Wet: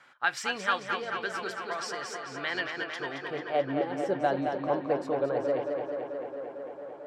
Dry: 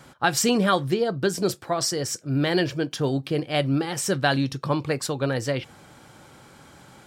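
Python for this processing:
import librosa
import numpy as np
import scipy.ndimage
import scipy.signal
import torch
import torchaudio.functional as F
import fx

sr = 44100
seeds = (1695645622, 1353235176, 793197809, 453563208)

y = fx.filter_sweep_bandpass(x, sr, from_hz=1800.0, to_hz=570.0, start_s=2.94, end_s=3.68, q=1.4)
y = fx.echo_tape(y, sr, ms=222, feedback_pct=85, wet_db=-4.0, lp_hz=4600.0, drive_db=15.0, wow_cents=37)
y = y * librosa.db_to_amplitude(-1.5)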